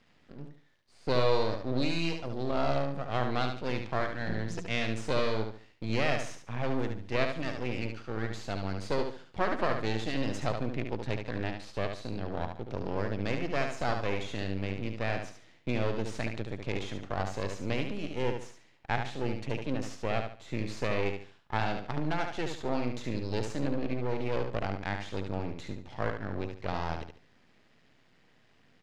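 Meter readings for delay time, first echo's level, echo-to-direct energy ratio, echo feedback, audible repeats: 72 ms, −6.0 dB, −5.5 dB, 30%, 3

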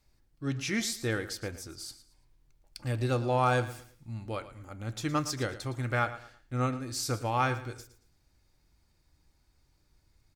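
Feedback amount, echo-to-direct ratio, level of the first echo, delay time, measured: 29%, −14.0 dB, −14.5 dB, 113 ms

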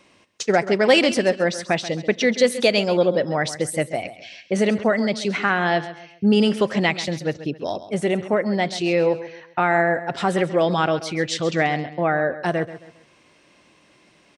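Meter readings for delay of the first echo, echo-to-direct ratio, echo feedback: 134 ms, −13.5 dB, 35%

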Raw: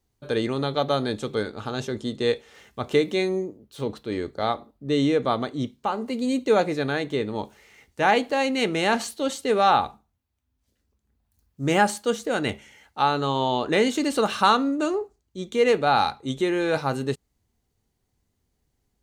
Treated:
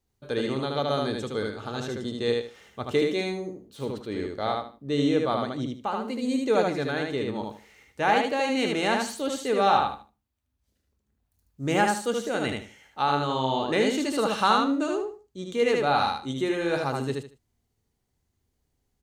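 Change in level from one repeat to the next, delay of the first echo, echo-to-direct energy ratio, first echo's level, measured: −12.5 dB, 76 ms, −2.5 dB, −3.0 dB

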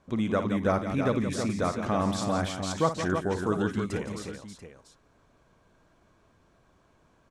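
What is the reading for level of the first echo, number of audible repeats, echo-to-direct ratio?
−11.0 dB, 4, −3.5 dB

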